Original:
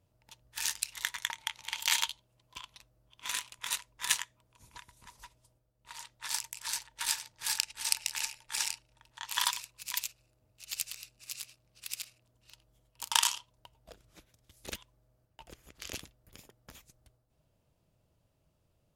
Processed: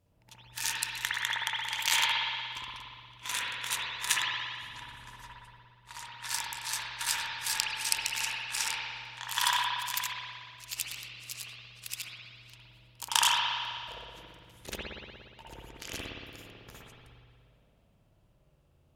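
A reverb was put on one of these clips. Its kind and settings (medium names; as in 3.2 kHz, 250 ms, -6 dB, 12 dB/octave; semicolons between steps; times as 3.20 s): spring tank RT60 2 s, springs 58 ms, chirp 75 ms, DRR -5.5 dB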